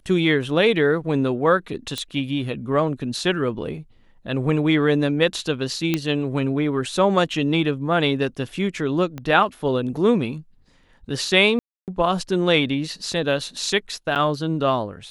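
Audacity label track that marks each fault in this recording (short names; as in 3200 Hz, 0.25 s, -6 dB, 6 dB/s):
1.980000	1.980000	pop -12 dBFS
5.940000	5.940000	pop -7 dBFS
9.180000	9.180000	pop -18 dBFS
11.590000	11.880000	gap 0.288 s
14.150000	14.160000	gap 7.8 ms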